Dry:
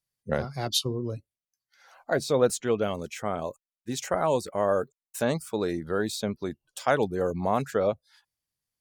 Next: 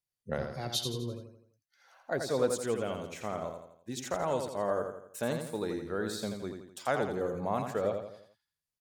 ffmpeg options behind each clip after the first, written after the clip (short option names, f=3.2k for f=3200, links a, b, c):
-af "aecho=1:1:84|168|252|336|420:0.501|0.226|0.101|0.0457|0.0206,volume=-7dB"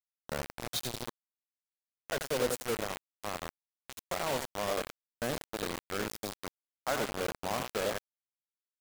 -af "acrusher=bits=4:mix=0:aa=0.000001,volume=-3dB"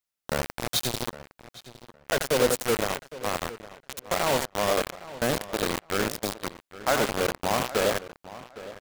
-filter_complex "[0:a]asplit=2[a][b];[b]adelay=811,lowpass=f=3.9k:p=1,volume=-16dB,asplit=2[c][d];[d]adelay=811,lowpass=f=3.9k:p=1,volume=0.21[e];[a][c][e]amix=inputs=3:normalize=0,volume=8.5dB"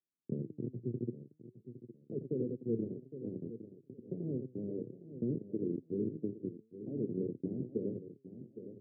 -af "acompressor=threshold=-25dB:ratio=6,flanger=delay=2.7:depth=6.7:regen=90:speed=0.53:shape=triangular,asuperpass=centerf=210:order=12:qfactor=0.69,volume=5.5dB"